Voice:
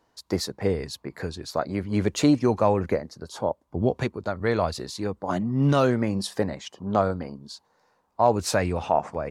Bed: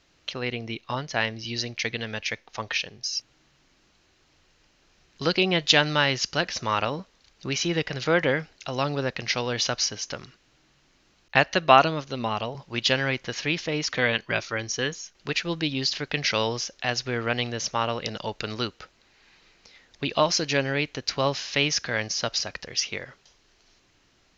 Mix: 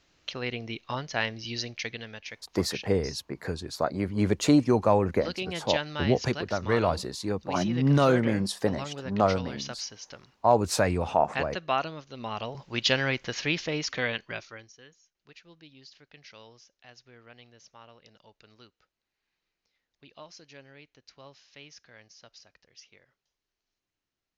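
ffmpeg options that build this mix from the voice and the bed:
ffmpeg -i stem1.wav -i stem2.wav -filter_complex "[0:a]adelay=2250,volume=-1dB[link_01];[1:a]volume=7dB,afade=type=out:start_time=1.52:duration=0.69:silence=0.375837,afade=type=in:start_time=12.13:duration=0.54:silence=0.316228,afade=type=out:start_time=13.56:duration=1.17:silence=0.0630957[link_02];[link_01][link_02]amix=inputs=2:normalize=0" out.wav

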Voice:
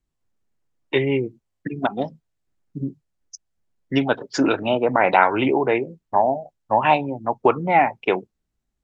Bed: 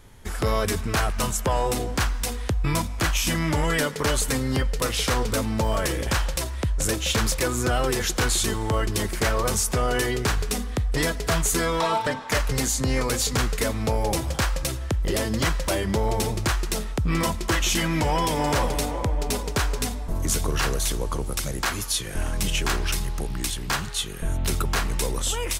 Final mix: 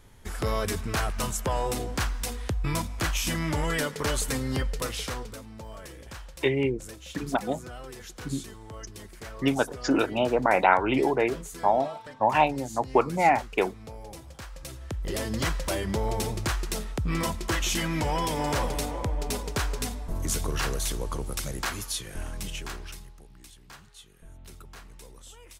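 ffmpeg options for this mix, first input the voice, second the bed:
ffmpeg -i stem1.wav -i stem2.wav -filter_complex "[0:a]adelay=5500,volume=-4.5dB[link_01];[1:a]volume=9.5dB,afade=type=out:start_time=4.68:duration=0.71:silence=0.199526,afade=type=in:start_time=14.49:duration=0.87:silence=0.199526,afade=type=out:start_time=21.55:duration=1.63:silence=0.125893[link_02];[link_01][link_02]amix=inputs=2:normalize=0" out.wav

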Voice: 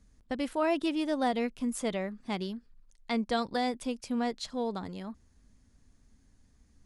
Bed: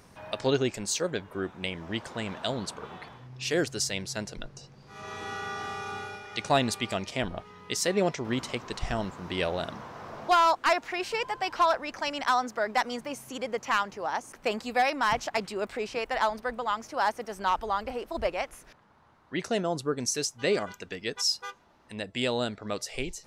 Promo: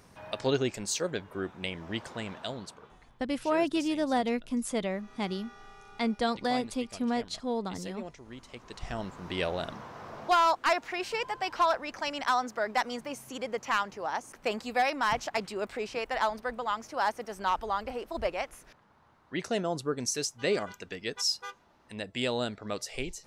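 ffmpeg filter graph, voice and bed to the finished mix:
ffmpeg -i stem1.wav -i stem2.wav -filter_complex "[0:a]adelay=2900,volume=1dB[link_01];[1:a]volume=12.5dB,afade=type=out:start_time=2.05:duration=0.94:silence=0.188365,afade=type=in:start_time=8.44:duration=0.87:silence=0.188365[link_02];[link_01][link_02]amix=inputs=2:normalize=0" out.wav

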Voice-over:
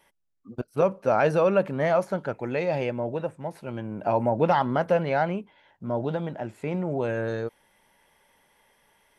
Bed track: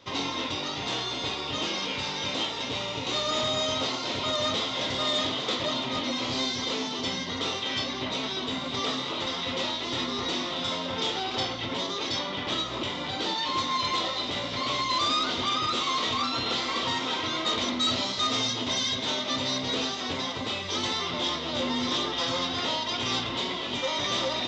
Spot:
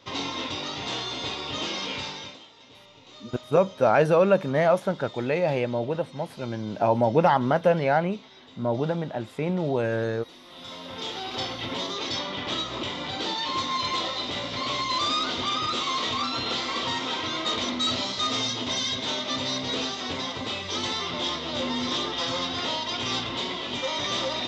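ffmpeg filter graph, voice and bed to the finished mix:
ffmpeg -i stem1.wav -i stem2.wav -filter_complex "[0:a]adelay=2750,volume=2dB[link_01];[1:a]volume=19dB,afade=type=out:start_time=1.97:duration=0.42:silence=0.112202,afade=type=in:start_time=10.41:duration=1.24:silence=0.105925[link_02];[link_01][link_02]amix=inputs=2:normalize=0" out.wav

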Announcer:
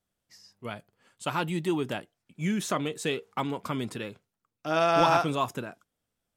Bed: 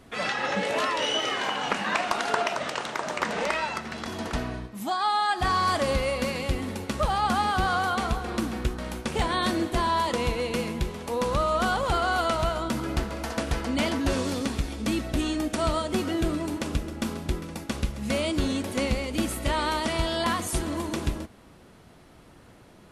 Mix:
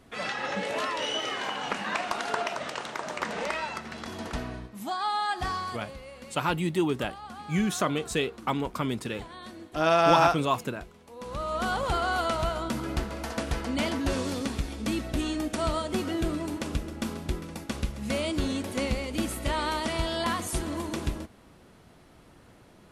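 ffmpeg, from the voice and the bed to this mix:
ffmpeg -i stem1.wav -i stem2.wav -filter_complex "[0:a]adelay=5100,volume=2dB[link_01];[1:a]volume=11.5dB,afade=type=out:start_time=5.34:duration=0.48:silence=0.199526,afade=type=in:start_time=11.15:duration=0.63:silence=0.16788[link_02];[link_01][link_02]amix=inputs=2:normalize=0" out.wav

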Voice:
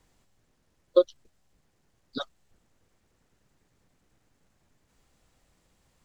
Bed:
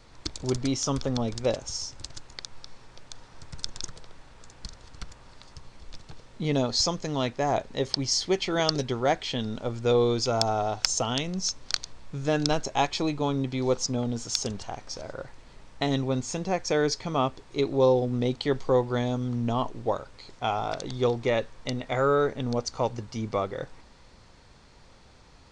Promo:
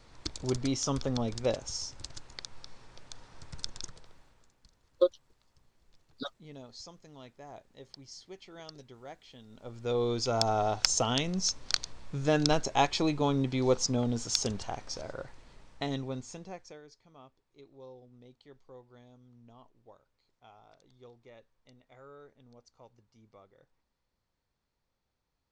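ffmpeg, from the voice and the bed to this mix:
ffmpeg -i stem1.wav -i stem2.wav -filter_complex "[0:a]adelay=4050,volume=-5dB[link_01];[1:a]volume=18dB,afade=type=out:start_time=3.57:duration=0.99:silence=0.112202,afade=type=in:start_time=9.48:duration=1.19:silence=0.0841395,afade=type=out:start_time=14.72:duration=2.09:silence=0.0398107[link_02];[link_01][link_02]amix=inputs=2:normalize=0" out.wav

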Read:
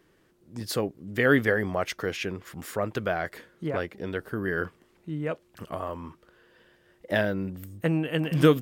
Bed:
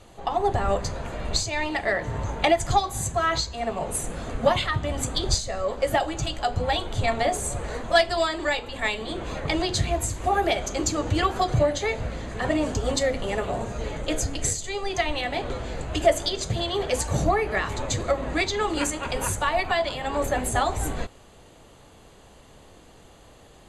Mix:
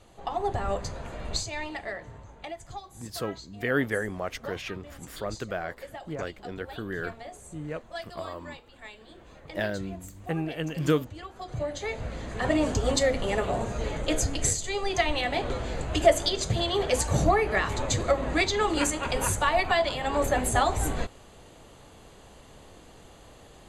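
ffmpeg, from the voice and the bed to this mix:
ffmpeg -i stem1.wav -i stem2.wav -filter_complex "[0:a]adelay=2450,volume=-5dB[link_01];[1:a]volume=13.5dB,afade=type=out:start_time=1.39:duration=0.85:silence=0.211349,afade=type=in:start_time=11.37:duration=1.25:silence=0.112202[link_02];[link_01][link_02]amix=inputs=2:normalize=0" out.wav

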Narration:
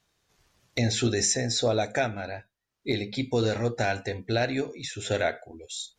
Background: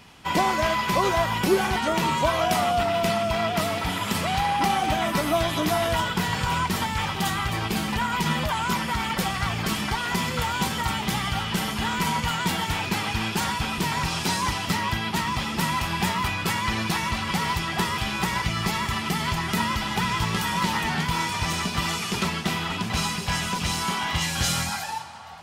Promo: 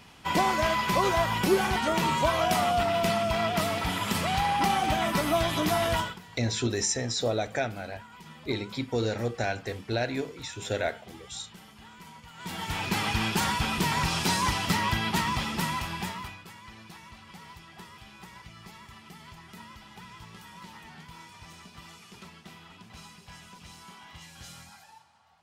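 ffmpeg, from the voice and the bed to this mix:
ffmpeg -i stem1.wav -i stem2.wav -filter_complex "[0:a]adelay=5600,volume=-3dB[link_01];[1:a]volume=20dB,afade=type=out:start_time=5.95:duration=0.24:silence=0.0891251,afade=type=in:start_time=12.34:duration=0.7:silence=0.0749894,afade=type=out:start_time=15.17:duration=1.28:silence=0.0891251[link_02];[link_01][link_02]amix=inputs=2:normalize=0" out.wav

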